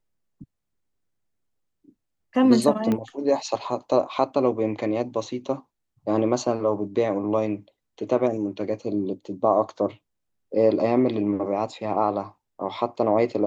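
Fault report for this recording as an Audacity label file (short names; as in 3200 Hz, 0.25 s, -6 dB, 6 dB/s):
2.920000	2.920000	pop -13 dBFS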